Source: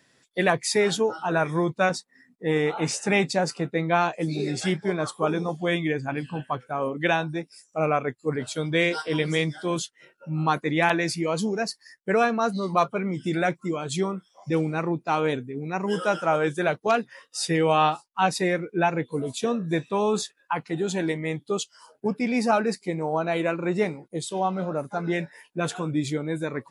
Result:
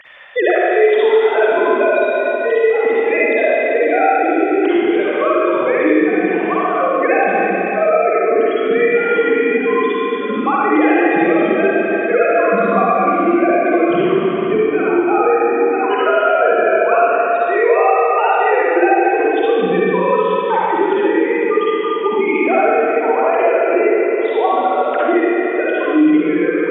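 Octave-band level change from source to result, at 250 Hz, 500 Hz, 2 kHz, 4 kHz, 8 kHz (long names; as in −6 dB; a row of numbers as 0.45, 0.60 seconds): +10.0 dB, +13.5 dB, +10.5 dB, 0.0 dB, below −40 dB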